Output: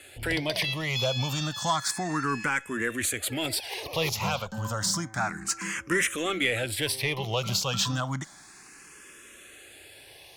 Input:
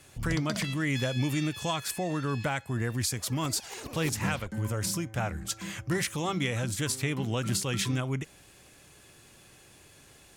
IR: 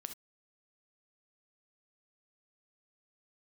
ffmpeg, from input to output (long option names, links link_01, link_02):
-filter_complex "[0:a]asplit=2[link_01][link_02];[link_02]highpass=frequency=720:poles=1,volume=12dB,asoftclip=type=tanh:threshold=-16dB[link_03];[link_01][link_03]amix=inputs=2:normalize=0,lowpass=frequency=7600:poles=1,volume=-6dB,asplit=2[link_04][link_05];[link_05]afreqshift=0.31[link_06];[link_04][link_06]amix=inputs=2:normalize=1,volume=3.5dB"